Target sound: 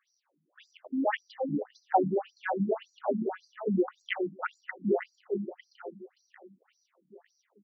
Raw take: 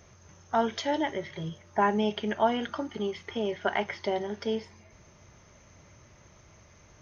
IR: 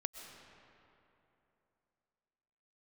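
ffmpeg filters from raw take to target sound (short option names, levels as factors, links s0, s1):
-af "afwtdn=0.02,bandreject=f=50:t=h:w=6,bandreject=f=100:t=h:w=6,bandreject=f=150:t=h:w=6,bandreject=f=200:t=h:w=6,bandreject=f=250:t=h:w=6,bandreject=f=300:t=h:w=6,asetrate=40517,aresample=44100,aecho=1:1:451|902|1353|1804|2255|2706|3157:0.501|0.271|0.146|0.0789|0.0426|0.023|0.0124,afftfilt=real='re*between(b*sr/1024,210*pow(6000/210,0.5+0.5*sin(2*PI*1.8*pts/sr))/1.41,210*pow(6000/210,0.5+0.5*sin(2*PI*1.8*pts/sr))*1.41)':imag='im*between(b*sr/1024,210*pow(6000/210,0.5+0.5*sin(2*PI*1.8*pts/sr))/1.41,210*pow(6000/210,0.5+0.5*sin(2*PI*1.8*pts/sr))*1.41)':win_size=1024:overlap=0.75,volume=2"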